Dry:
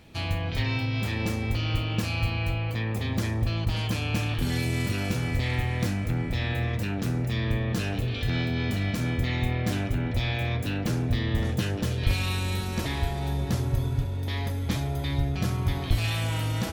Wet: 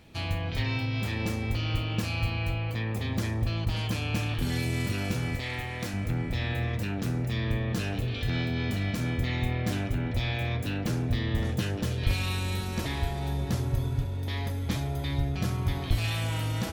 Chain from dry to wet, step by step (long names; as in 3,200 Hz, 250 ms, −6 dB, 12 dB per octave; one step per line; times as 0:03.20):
0:05.35–0:05.94: low-shelf EQ 260 Hz −9.5 dB
level −2 dB